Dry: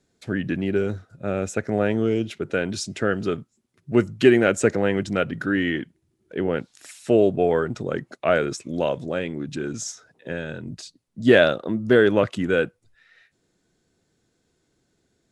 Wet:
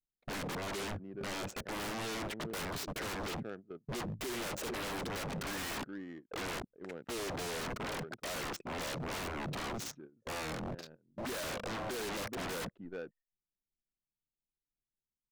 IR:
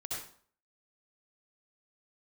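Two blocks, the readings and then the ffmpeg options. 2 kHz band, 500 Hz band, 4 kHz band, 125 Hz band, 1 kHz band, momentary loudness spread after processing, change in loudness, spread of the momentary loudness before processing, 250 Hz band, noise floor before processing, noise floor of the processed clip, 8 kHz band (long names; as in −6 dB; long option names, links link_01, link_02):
−14.5 dB, −20.5 dB, −7.0 dB, −15.0 dB, −9.0 dB, 7 LU, −17.0 dB, 15 LU, −19.0 dB, −71 dBFS, below −85 dBFS, −6.5 dB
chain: -af "equalizer=frequency=74:width_type=o:width=1.1:gain=-13.5,anlmdn=0.251,alimiter=limit=-10.5dB:level=0:latency=1,aecho=1:1:423:0.0668,agate=range=-14dB:threshold=-48dB:ratio=16:detection=peak,volume=23.5dB,asoftclip=hard,volume=-23.5dB,adynamicsmooth=sensitivity=7.5:basefreq=770,aeval=exprs='0.0141*(abs(mod(val(0)/0.0141+3,4)-2)-1)':channel_layout=same,volume=3dB"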